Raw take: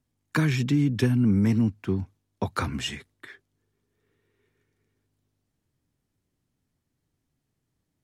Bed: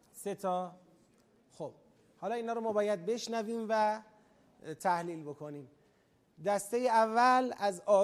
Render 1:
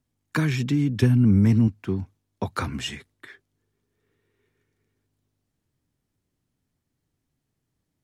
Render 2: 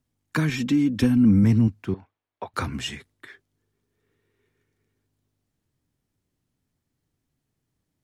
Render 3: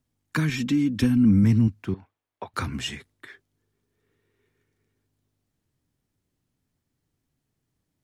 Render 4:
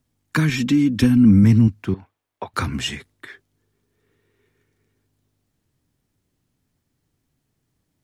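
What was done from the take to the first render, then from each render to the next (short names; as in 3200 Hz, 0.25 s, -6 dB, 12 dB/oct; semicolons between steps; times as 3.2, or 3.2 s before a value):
1.02–1.68 low shelf 120 Hz +11 dB
0.49–1.44 comb 3.8 ms; 1.94–2.54 three-band isolator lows -20 dB, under 470 Hz, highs -23 dB, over 3400 Hz
dynamic EQ 610 Hz, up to -6 dB, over -36 dBFS, Q 0.93
gain +5.5 dB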